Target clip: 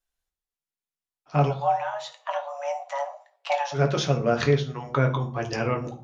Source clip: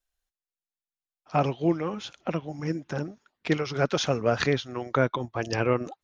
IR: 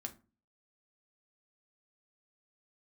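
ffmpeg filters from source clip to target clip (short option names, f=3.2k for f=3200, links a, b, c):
-filter_complex "[0:a]asplit=3[a][b][c];[a]afade=t=out:st=1.49:d=0.02[d];[b]afreqshift=420,afade=t=in:st=1.49:d=0.02,afade=t=out:st=3.72:d=0.02[e];[c]afade=t=in:st=3.72:d=0.02[f];[d][e][f]amix=inputs=3:normalize=0[g];[1:a]atrim=start_sample=2205,afade=t=out:st=0.44:d=0.01,atrim=end_sample=19845,asetrate=27342,aresample=44100[h];[g][h]afir=irnorm=-1:irlink=0"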